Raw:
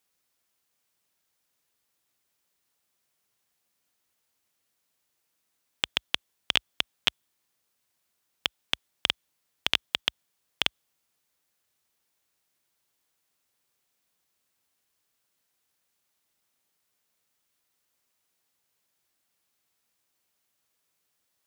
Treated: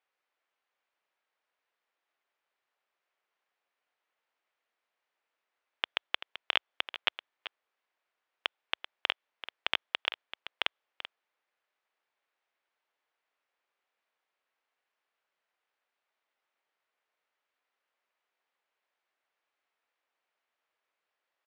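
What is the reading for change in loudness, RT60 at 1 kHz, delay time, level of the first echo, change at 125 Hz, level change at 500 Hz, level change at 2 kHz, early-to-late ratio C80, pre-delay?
−5.0 dB, no reverb audible, 386 ms, −12.5 dB, below −20 dB, −1.5 dB, −1.5 dB, no reverb audible, no reverb audible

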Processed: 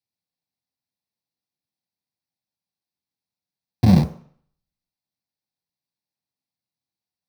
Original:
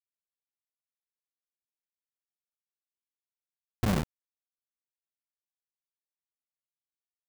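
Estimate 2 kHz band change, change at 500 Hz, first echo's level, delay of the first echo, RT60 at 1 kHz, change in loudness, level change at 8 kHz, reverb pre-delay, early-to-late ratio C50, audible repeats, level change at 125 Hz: +1.0 dB, +6.0 dB, no echo audible, no echo audible, 0.60 s, +12.5 dB, can't be measured, 3 ms, 15.0 dB, no echo audible, +15.0 dB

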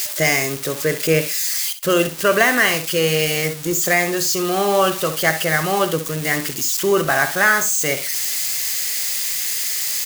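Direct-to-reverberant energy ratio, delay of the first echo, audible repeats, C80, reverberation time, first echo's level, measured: no reverb audible, 64 ms, 2, no reverb audible, no reverb audible, −12.0 dB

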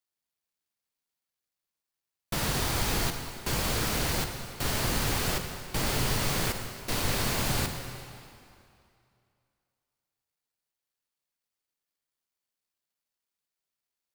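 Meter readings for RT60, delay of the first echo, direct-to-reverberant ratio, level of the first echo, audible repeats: 2.5 s, no echo audible, 5.5 dB, no echo audible, no echo audible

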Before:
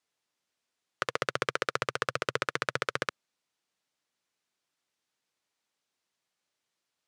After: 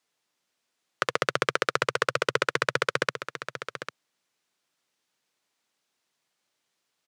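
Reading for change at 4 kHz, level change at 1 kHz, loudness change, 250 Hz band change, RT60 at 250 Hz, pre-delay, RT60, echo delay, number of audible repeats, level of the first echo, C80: +5.5 dB, +5.0 dB, +4.5 dB, +5.0 dB, no reverb audible, no reverb audible, no reverb audible, 798 ms, 1, −10.5 dB, no reverb audible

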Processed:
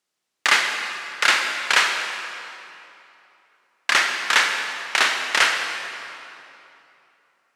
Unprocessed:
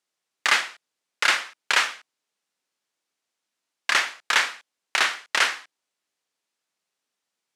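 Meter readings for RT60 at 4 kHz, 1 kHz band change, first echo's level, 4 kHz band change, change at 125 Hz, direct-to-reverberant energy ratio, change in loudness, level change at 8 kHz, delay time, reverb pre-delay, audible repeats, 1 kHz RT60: 2.2 s, +4.0 dB, no echo audible, +4.0 dB, can't be measured, 4.0 dB, +3.0 dB, +3.5 dB, no echo audible, 36 ms, no echo audible, 2.9 s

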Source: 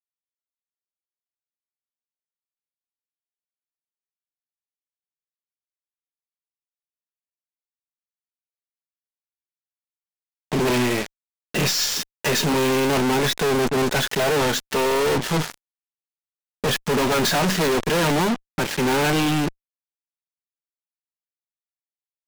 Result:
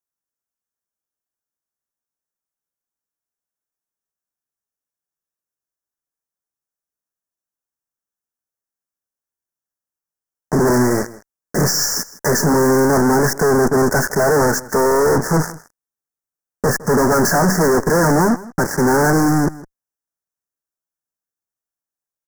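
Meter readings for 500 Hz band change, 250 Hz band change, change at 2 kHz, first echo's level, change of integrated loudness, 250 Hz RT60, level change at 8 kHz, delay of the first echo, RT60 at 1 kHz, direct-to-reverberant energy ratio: +6.0 dB, +6.5 dB, +3.5 dB, −19.0 dB, +5.0 dB, no reverb audible, +6.0 dB, 160 ms, no reverb audible, no reverb audible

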